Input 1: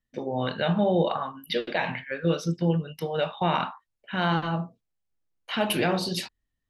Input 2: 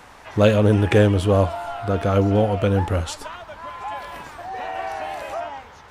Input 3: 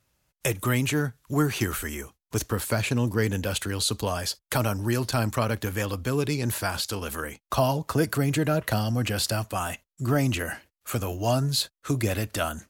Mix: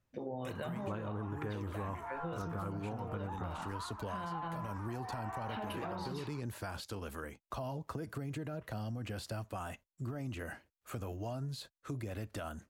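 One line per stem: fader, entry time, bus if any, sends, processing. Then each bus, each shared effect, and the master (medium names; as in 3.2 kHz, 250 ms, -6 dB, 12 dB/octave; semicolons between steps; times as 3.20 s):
-5.5 dB, 0.00 s, bus A, no send, none
-11.5 dB, 0.50 s, no bus, no send, FFT filter 370 Hz 0 dB, 570 Hz -8 dB, 1 kHz +10 dB, 3.3 kHz -12 dB
-8.0 dB, 0.00 s, bus A, no send, peaking EQ 12 kHz -2.5 dB 0.33 oct; peak limiter -18.5 dBFS, peak gain reduction 7 dB
bus A: 0.0 dB, treble shelf 2.2 kHz -10 dB; peak limiter -27.5 dBFS, peak gain reduction 10 dB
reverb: none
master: compression 10:1, threshold -36 dBFS, peak gain reduction 13.5 dB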